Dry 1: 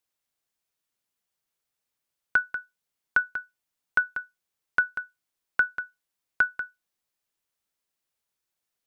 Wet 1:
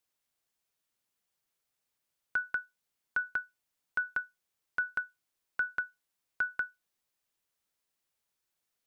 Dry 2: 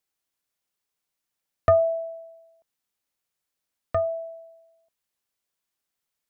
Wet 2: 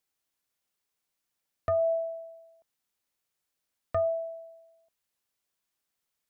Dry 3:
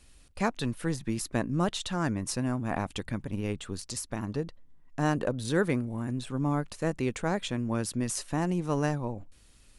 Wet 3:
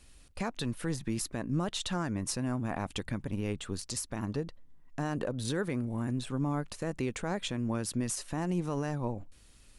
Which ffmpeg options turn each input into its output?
-af "alimiter=limit=0.0794:level=0:latency=1:release=111"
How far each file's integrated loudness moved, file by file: -7.0 LU, -5.5 LU, -3.0 LU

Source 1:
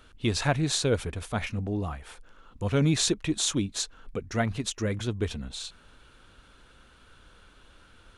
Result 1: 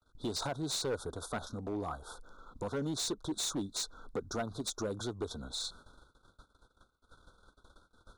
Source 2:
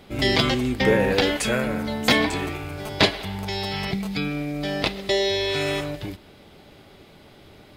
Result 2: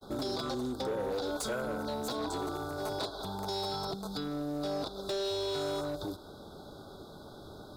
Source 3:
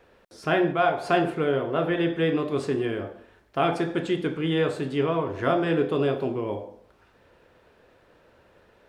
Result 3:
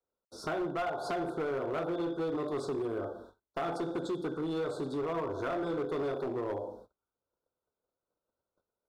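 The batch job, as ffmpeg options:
-filter_complex "[0:a]alimiter=limit=0.2:level=0:latency=1:release=396,acompressor=threshold=0.0282:ratio=3,adynamicequalizer=threshold=0.00316:dfrequency=200:dqfactor=2.5:tfrequency=200:tqfactor=2.5:attack=5:release=100:ratio=0.375:range=3.5:mode=cutabove:tftype=bell,agate=range=0.02:threshold=0.00251:ratio=16:detection=peak,acrossover=split=180|3000[s0][s1][s2];[s0]acompressor=threshold=0.00562:ratio=10[s3];[s3][s1][s2]amix=inputs=3:normalize=0,asuperstop=centerf=2300:order=20:qfactor=1.2,asoftclip=type=hard:threshold=0.0282,bass=f=250:g=-3,treble=f=4000:g=-3,volume=1.26"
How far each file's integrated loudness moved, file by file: -9.0 LU, -12.0 LU, -9.5 LU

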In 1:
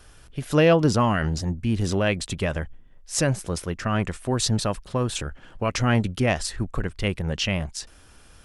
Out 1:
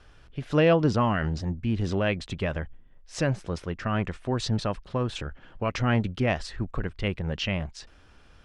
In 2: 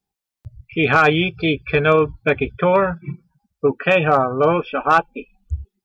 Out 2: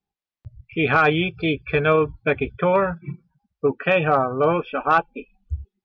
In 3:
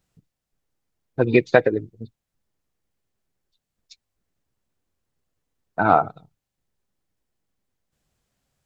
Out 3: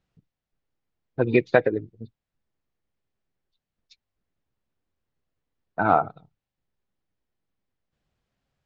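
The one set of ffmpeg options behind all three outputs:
-af "lowpass=4000,volume=0.708"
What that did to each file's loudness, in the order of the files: -3.5 LU, -3.0 LU, -3.0 LU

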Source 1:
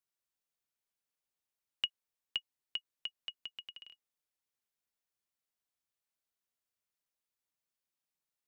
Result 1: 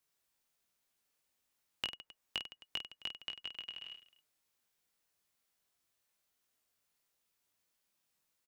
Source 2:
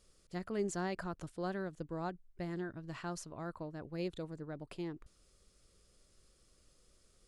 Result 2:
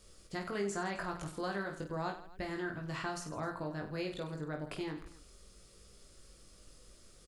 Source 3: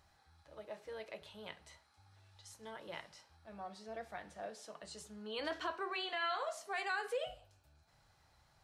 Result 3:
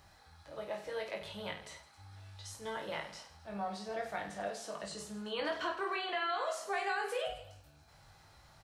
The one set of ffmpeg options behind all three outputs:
-filter_complex "[0:a]acrossover=split=790|2000[s0][s1][s2];[s0]acompressor=threshold=0.00398:ratio=4[s3];[s1]acompressor=threshold=0.00447:ratio=4[s4];[s2]acompressor=threshold=0.002:ratio=4[s5];[s3][s4][s5]amix=inputs=3:normalize=0,aecho=1:1:20|50|95|162.5|263.8:0.631|0.398|0.251|0.158|0.1,volume=2.24"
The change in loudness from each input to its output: -1.5 LU, +2.0 LU, +4.0 LU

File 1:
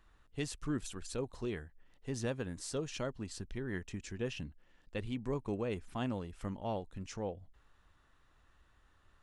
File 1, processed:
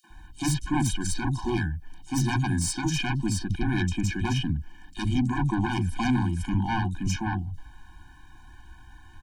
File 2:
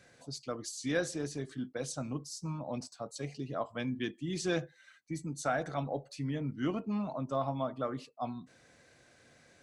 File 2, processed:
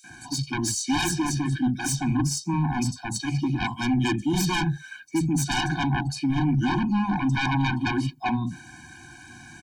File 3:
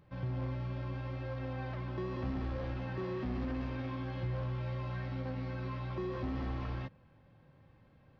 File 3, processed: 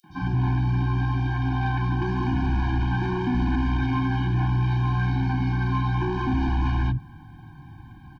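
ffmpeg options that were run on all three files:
-filter_complex "[0:a]acrossover=split=190|4100[s0][s1][s2];[s1]adelay=40[s3];[s0]adelay=100[s4];[s4][s3][s2]amix=inputs=3:normalize=0,aeval=exprs='0.119*sin(PI/2*6.31*val(0)/0.119)':c=same,afftfilt=real='re*eq(mod(floor(b*sr/1024/360),2),0)':imag='im*eq(mod(floor(b*sr/1024/360),2),0)':win_size=1024:overlap=0.75"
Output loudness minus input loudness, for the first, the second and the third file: +13.0 LU, +11.5 LU, +14.0 LU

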